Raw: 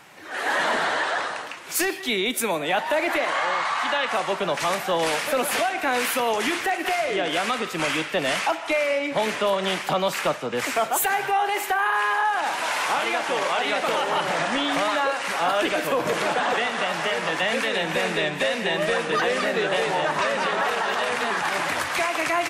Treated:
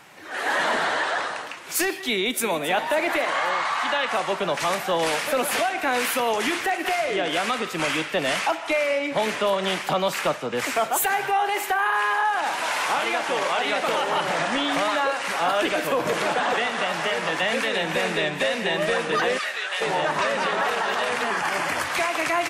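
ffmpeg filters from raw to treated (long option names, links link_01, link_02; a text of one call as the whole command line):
ffmpeg -i in.wav -filter_complex "[0:a]asplit=2[link_01][link_02];[link_02]afade=type=in:start_time=2.15:duration=0.01,afade=type=out:start_time=2.6:duration=0.01,aecho=0:1:270|540|810|1080|1350|1620:0.223872|0.12313|0.0677213|0.0372467|0.0204857|0.0112671[link_03];[link_01][link_03]amix=inputs=2:normalize=0,asplit=3[link_04][link_05][link_06];[link_04]afade=type=out:start_time=19.37:duration=0.02[link_07];[link_05]highpass=1300,afade=type=in:start_time=19.37:duration=0.02,afade=type=out:start_time=19.8:duration=0.02[link_08];[link_06]afade=type=in:start_time=19.8:duration=0.02[link_09];[link_07][link_08][link_09]amix=inputs=3:normalize=0,asettb=1/sr,asplit=3[link_10][link_11][link_12];[link_10]atrim=end=21.224[link_13];[link_11]atrim=start=21.22:end=21.83,asetpts=PTS-STARTPTS,afade=type=in:duration=0.004:curve=qsin,afade=type=out:start_time=0.606:duration=0.004:curve=qsin,bandreject=frequency=3800:width=6.7[link_14];[link_12]atrim=start=21.826[link_15];[link_13][link_14]acrossfade=duration=0.004:curve1=hsin:curve2=qsin[link_16];[link_16][link_15]acrossfade=duration=0.004:curve1=qsin:curve2=hsin" out.wav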